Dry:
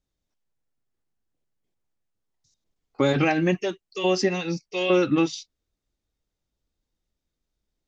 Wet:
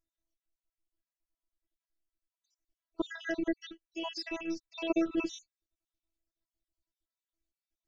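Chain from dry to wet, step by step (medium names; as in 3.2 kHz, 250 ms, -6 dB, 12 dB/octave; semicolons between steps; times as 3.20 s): random holes in the spectrogram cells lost 57%; robot voice 329 Hz; trim -5 dB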